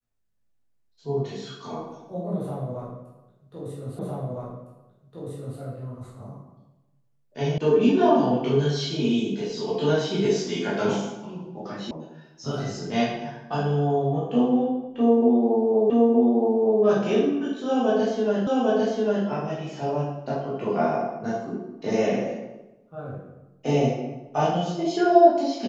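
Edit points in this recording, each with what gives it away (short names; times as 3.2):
3.99 repeat of the last 1.61 s
7.58 sound cut off
11.91 sound cut off
15.9 repeat of the last 0.92 s
18.47 repeat of the last 0.8 s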